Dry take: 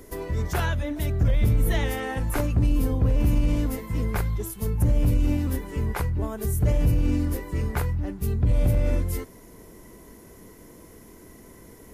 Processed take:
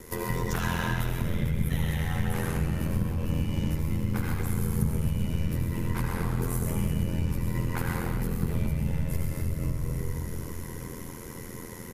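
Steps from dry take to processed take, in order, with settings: low shelf 150 Hz -6 dB; echo 0.127 s -8 dB; reverb RT60 2.8 s, pre-delay 69 ms, DRR -3 dB; compressor 10:1, threshold -28 dBFS, peak gain reduction 15 dB; thirty-one-band EQ 160 Hz +8 dB, 315 Hz -9 dB, 630 Hz -12 dB; ring modulator 42 Hz; gain +6.5 dB

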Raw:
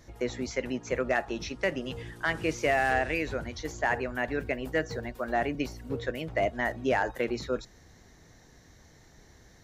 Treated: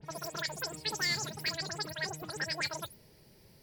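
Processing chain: spectral delay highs late, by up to 0.249 s; bell 450 Hz -13 dB 0.93 oct; wide varispeed 2.66×; gain -2 dB

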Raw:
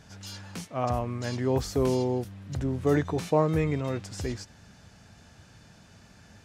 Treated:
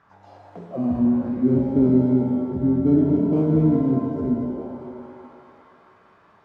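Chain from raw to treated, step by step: tilt -2 dB/oct; band-limited delay 0.21 s, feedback 83%, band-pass 660 Hz, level -20 dB; in parallel at -3.5 dB: sample-rate reducer 1800 Hz, jitter 0%; on the sum: auto-wah 240–1400 Hz, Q 5.2, down, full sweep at -22.5 dBFS; shimmer reverb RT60 2 s, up +7 st, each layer -8 dB, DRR 0.5 dB; gain +8 dB

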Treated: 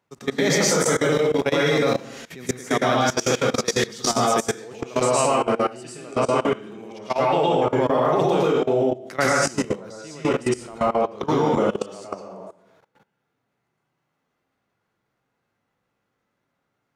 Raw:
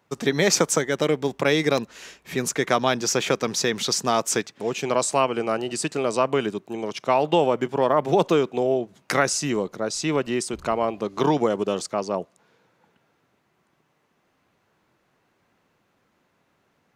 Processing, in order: plate-style reverb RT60 0.71 s, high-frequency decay 0.75×, pre-delay 0.1 s, DRR -5.5 dB; harmonic-percussive split percussive -3 dB; level quantiser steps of 19 dB

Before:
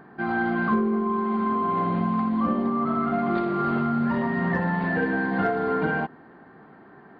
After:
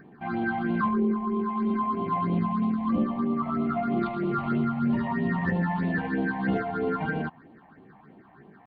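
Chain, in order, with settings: tempo 0.83×; phaser stages 6, 3.1 Hz, lowest notch 370–1600 Hz

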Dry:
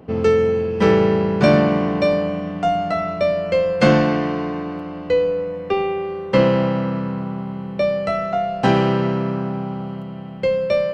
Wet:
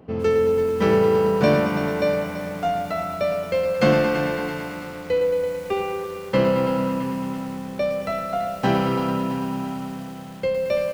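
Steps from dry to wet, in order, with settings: feedback echo 0.333 s, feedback 58%, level -20 dB; lo-fi delay 0.111 s, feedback 80%, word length 6-bit, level -9 dB; gain -4.5 dB

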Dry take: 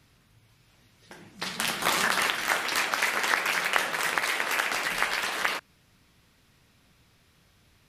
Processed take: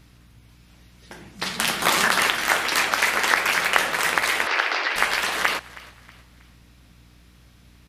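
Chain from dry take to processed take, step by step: hum 60 Hz, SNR 28 dB; 4.47–4.96 elliptic band-pass 330–5000 Hz; on a send: frequency-shifting echo 0.319 s, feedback 40%, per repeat +50 Hz, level -20.5 dB; on the sum: gain +5.5 dB

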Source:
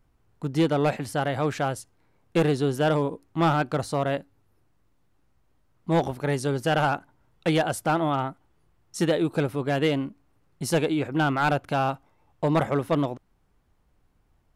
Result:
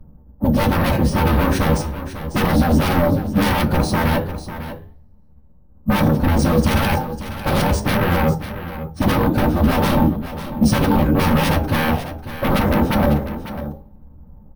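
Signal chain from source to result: low-pass opened by the level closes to 890 Hz, open at -23.5 dBFS; bell 2200 Hz -5.5 dB 1.1 oct; notch 7300 Hz, Q 9.6; de-hum 173 Hz, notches 5; in parallel at -2.5 dB: limiter -26.5 dBFS, peak gain reduction 13 dB; on the sum: flange 0.36 Hz, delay 7.7 ms, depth 9.9 ms, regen -82%; formant-preserving pitch shift -9 st; sine folder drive 8 dB, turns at -22 dBFS; echo 0.547 s -12 dB; on a send at -2 dB: reverb RT60 0.20 s, pre-delay 3 ms; on the sum: careless resampling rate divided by 3×, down filtered, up hold; gain +2.5 dB

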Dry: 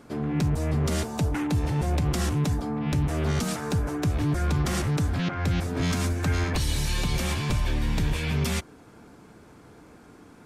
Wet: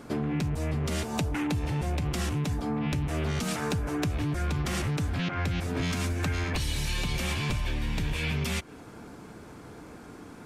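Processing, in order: dynamic EQ 2600 Hz, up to +5 dB, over -50 dBFS, Q 1.5; compressor 6:1, threshold -31 dBFS, peak gain reduction 10.5 dB; gain +4.5 dB

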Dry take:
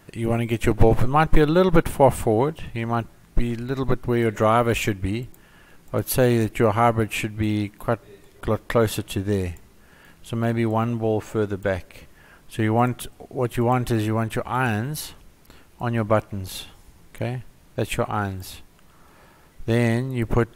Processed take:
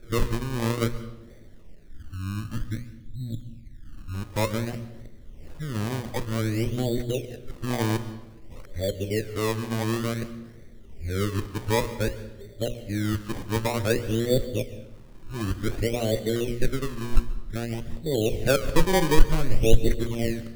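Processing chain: whole clip reversed; RIAA curve playback; notches 60/120/180/240/300/360/420/480/540/600 Hz; spectral gain 1.91–4.14, 340–4500 Hz -22 dB; EQ curve 140 Hz 0 dB, 560 Hz +11 dB, 1400 Hz -28 dB, 1900 Hz +14 dB, 4000 Hz -6 dB; in parallel at +1 dB: compressor, threshold -24 dBFS, peak gain reduction 31 dB; on the sum: decimation with a swept rate 22×, swing 100% 0.54 Hz; on a send at -14 dB: reverb RT60 0.95 s, pre-delay 0.116 s; on the sum: gain -17 dB

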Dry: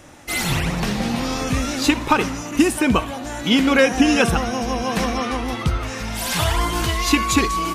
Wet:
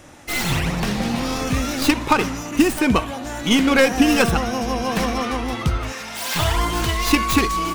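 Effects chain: tracing distortion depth 0.14 ms; 5.92–6.36 HPF 630 Hz 6 dB/oct

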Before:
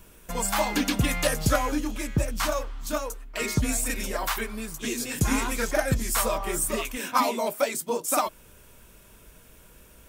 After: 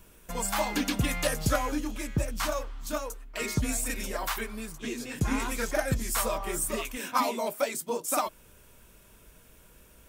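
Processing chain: 4.72–5.4 high shelf 5100 Hz -10.5 dB; gain -3.5 dB

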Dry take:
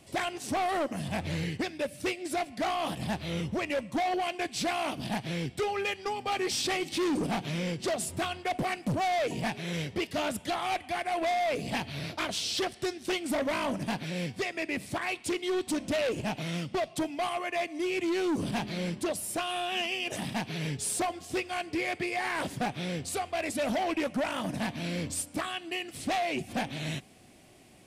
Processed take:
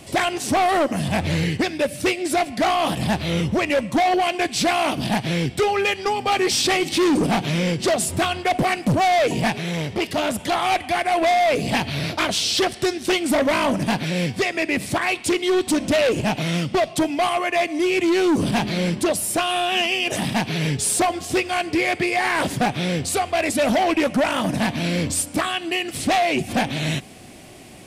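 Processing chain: in parallel at +0.5 dB: limiter -33 dBFS, peak gain reduction 9 dB; 9.52–10.52 on the sum: core saturation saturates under 420 Hz; gain +7.5 dB

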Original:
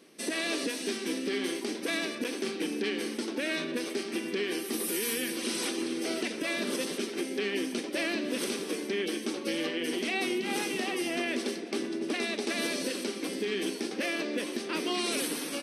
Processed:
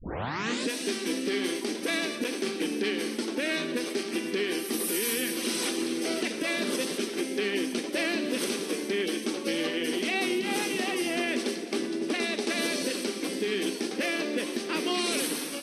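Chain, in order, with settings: tape start at the beginning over 0.69 s; AGC gain up to 4 dB; on a send: thin delay 0.107 s, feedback 70%, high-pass 3900 Hz, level -11.5 dB; on the sum: gain -1.5 dB

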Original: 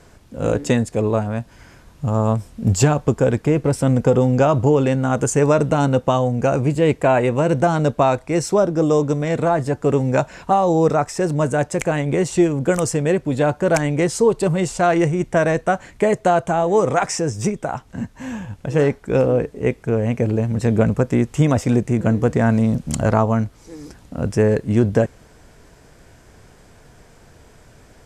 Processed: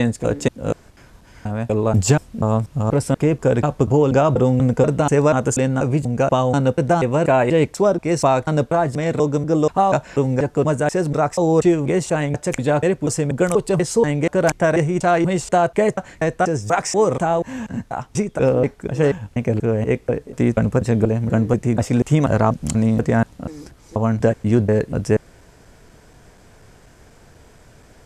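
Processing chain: slices in reverse order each 0.242 s, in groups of 4

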